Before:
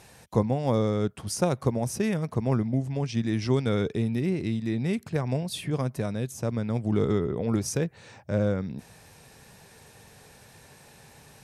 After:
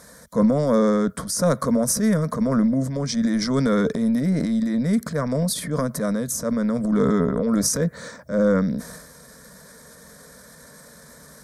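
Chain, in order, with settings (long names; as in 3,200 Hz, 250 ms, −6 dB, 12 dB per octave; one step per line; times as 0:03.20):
high-pass filter 42 Hz
transient designer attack −6 dB, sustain +8 dB
phaser with its sweep stopped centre 540 Hz, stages 8
level +9 dB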